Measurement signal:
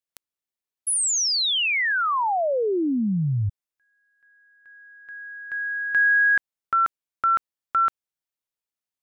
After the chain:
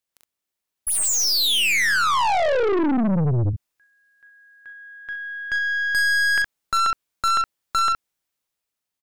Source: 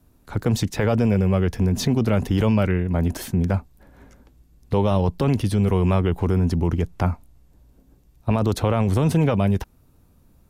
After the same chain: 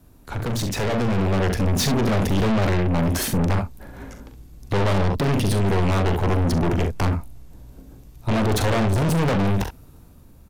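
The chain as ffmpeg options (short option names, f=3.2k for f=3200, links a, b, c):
-af "aecho=1:1:41|67:0.355|0.282,aeval=exprs='(tanh(31.6*val(0)+0.35)-tanh(0.35))/31.6':c=same,dynaudnorm=f=220:g=9:m=5dB,volume=6.5dB"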